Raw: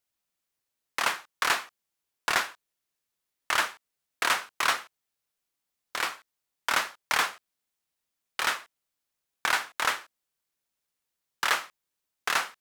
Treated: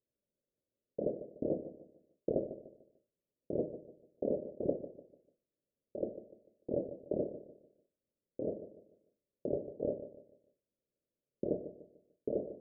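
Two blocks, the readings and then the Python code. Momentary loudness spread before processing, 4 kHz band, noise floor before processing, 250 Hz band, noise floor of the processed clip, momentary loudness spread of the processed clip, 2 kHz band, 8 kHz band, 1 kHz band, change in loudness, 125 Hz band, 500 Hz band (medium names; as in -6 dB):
10 LU, under -40 dB, -85 dBFS, +10.5 dB, under -85 dBFS, 15 LU, under -40 dB, under -40 dB, -29.0 dB, -11.0 dB, +8.5 dB, +6.5 dB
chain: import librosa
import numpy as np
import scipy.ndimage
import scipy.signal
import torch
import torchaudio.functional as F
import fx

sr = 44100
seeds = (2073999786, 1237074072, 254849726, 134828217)

p1 = fx.bit_reversed(x, sr, seeds[0], block=32)
p2 = scipy.signal.sosfilt(scipy.signal.cheby1(6, 1.0, 600.0, 'lowpass', fs=sr, output='sos'), p1)
p3 = fx.low_shelf(p2, sr, hz=150.0, db=-8.0)
p4 = p3 + fx.echo_feedback(p3, sr, ms=148, feedback_pct=35, wet_db=-12.5, dry=0)
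y = p4 * 10.0 ** (8.0 / 20.0)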